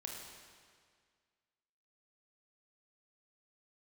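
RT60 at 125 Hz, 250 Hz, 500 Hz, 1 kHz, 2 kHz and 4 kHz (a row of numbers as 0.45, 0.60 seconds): 1.9, 1.9, 1.9, 1.9, 1.8, 1.7 seconds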